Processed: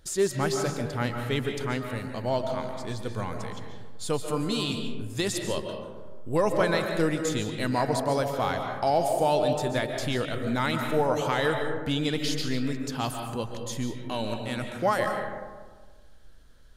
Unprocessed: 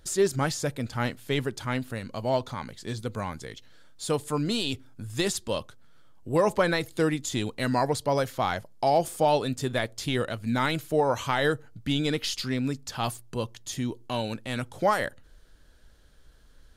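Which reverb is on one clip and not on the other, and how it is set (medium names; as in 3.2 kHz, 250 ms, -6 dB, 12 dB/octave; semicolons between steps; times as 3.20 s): algorithmic reverb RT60 1.5 s, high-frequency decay 0.35×, pre-delay 100 ms, DRR 4 dB; trim -1.5 dB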